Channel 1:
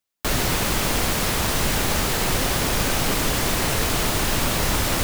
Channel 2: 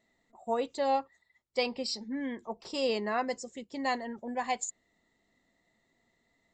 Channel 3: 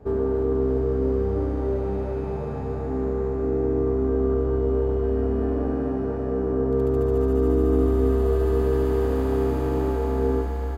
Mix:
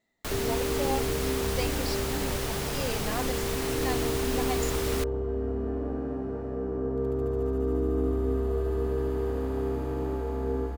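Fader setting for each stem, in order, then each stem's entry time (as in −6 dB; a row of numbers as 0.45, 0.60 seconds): −11.0, −4.0, −7.0 decibels; 0.00, 0.00, 0.25 seconds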